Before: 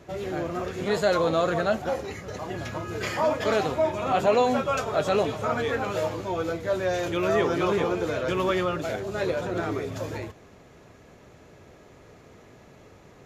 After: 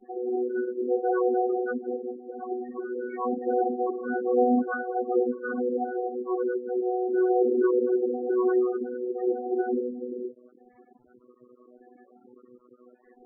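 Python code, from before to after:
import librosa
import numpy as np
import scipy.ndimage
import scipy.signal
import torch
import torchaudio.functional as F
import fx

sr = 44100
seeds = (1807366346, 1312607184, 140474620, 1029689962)

y = fx.chord_vocoder(x, sr, chord='bare fifth', root=59)
y = fx.quant_dither(y, sr, seeds[0], bits=8, dither='none')
y = fx.spec_topn(y, sr, count=8)
y = y * librosa.db_to_amplitude(1.0)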